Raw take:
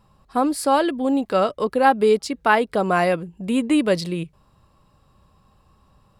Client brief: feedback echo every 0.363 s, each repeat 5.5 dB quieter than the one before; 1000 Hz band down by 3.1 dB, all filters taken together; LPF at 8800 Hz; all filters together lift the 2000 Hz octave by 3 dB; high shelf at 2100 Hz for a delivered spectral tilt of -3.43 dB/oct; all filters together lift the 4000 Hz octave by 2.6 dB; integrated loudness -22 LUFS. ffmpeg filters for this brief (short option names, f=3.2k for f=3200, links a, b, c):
-af "lowpass=8.8k,equalizer=f=1k:t=o:g=-5,equalizer=f=2k:t=o:g=8.5,highshelf=f=2.1k:g=-7,equalizer=f=4k:t=o:g=7.5,aecho=1:1:363|726|1089|1452|1815|2178|2541:0.531|0.281|0.149|0.079|0.0419|0.0222|0.0118,volume=-2dB"